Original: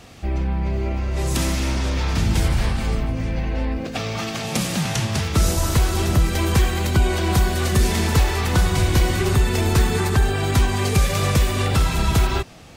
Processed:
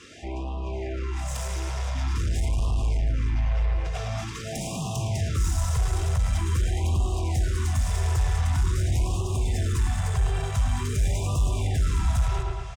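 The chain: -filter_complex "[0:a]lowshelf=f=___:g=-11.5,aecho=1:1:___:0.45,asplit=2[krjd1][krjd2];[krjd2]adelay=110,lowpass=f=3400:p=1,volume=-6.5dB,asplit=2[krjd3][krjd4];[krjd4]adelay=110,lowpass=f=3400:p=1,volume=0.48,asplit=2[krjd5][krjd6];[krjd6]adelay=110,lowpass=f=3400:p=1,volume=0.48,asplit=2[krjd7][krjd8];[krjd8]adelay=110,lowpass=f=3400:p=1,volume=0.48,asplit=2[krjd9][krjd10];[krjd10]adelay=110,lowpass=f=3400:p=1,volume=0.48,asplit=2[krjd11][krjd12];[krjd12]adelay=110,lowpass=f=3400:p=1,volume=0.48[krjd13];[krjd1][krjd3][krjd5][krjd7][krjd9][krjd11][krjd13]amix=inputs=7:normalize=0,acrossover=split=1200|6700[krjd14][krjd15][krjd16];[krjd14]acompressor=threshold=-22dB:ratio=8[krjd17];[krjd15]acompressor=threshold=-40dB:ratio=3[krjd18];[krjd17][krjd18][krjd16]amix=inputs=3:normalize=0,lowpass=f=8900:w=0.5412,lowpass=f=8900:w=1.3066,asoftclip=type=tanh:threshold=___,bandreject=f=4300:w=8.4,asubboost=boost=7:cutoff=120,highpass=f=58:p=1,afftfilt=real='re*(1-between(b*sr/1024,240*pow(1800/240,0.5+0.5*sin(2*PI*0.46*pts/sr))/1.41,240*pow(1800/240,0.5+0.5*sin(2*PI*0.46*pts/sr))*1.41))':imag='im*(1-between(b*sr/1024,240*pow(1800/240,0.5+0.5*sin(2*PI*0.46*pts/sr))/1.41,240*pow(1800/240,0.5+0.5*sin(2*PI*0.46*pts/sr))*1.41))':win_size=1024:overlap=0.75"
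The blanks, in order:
170, 2.9, -28dB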